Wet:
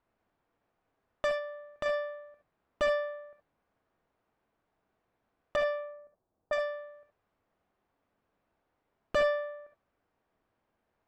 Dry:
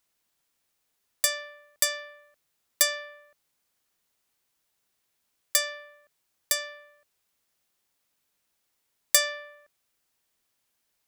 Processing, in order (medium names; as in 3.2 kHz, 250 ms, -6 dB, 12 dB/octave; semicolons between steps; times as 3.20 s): wavefolder -17.5 dBFS; low-pass 1.1 kHz 12 dB/octave; 1.31–1.86 s: compression 1.5:1, threshold -49 dBFS, peak gain reduction 6 dB; 5.56–6.53 s: level-controlled noise filter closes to 690 Hz, open at -30 dBFS; gated-style reverb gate 90 ms rising, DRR 5 dB; trim +8 dB